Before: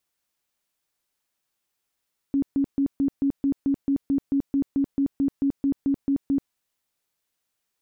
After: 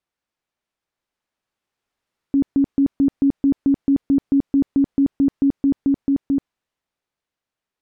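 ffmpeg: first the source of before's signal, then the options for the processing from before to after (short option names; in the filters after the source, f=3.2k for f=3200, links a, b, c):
-f lavfi -i "aevalsrc='0.119*sin(2*PI*277*mod(t,0.22))*lt(mod(t,0.22),23/277)':d=4.18:s=44100"
-af "aemphasis=mode=reproduction:type=75fm,dynaudnorm=f=270:g=13:m=6dB"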